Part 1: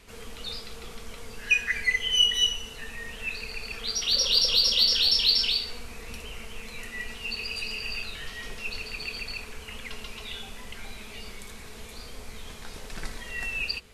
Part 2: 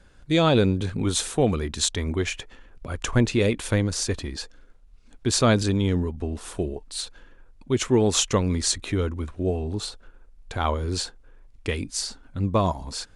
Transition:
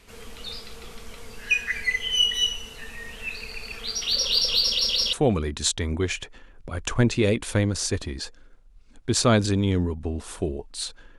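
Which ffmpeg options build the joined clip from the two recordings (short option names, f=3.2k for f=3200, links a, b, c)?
-filter_complex "[0:a]apad=whole_dur=11.18,atrim=end=11.18,asplit=3[a][b][c];[a]atrim=end=4.792[d];[b]atrim=start=4.618:end=4.792[e];[c]atrim=start=4.618:end=4.792[f];[1:a]atrim=start=1.298:end=7.35[g];[d][e]acrossfade=d=0.004:c1=hsin:c2=hsin[h];[h][f]acrossfade=d=0.004:c1=hsin:c2=hsin[i];[i][g]acrossfade=d=0.004:c1=hsin:c2=hsin"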